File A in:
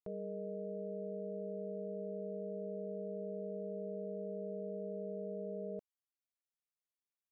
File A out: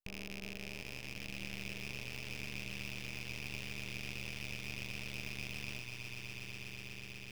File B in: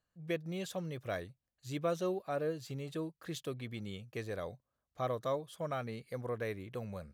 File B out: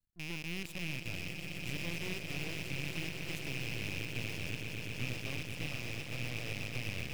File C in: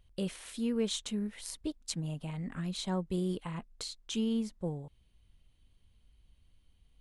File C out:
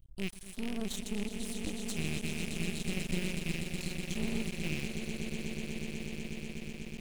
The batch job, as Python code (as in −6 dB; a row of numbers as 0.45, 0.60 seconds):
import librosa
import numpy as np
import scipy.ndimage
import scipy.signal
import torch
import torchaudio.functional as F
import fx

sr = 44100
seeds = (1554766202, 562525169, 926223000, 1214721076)

p1 = fx.rattle_buzz(x, sr, strikes_db=-48.0, level_db=-22.0)
p2 = fx.high_shelf(p1, sr, hz=9700.0, db=10.5)
p3 = fx.rider(p2, sr, range_db=10, speed_s=2.0)
p4 = fx.tone_stack(p3, sr, knobs='10-0-1')
p5 = p4 + fx.echo_swell(p4, sr, ms=123, loudest=8, wet_db=-9.5, dry=0)
p6 = np.maximum(p5, 0.0)
y = p6 * librosa.db_to_amplitude(16.0)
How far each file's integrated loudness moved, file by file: −0.5, 0.0, −1.5 LU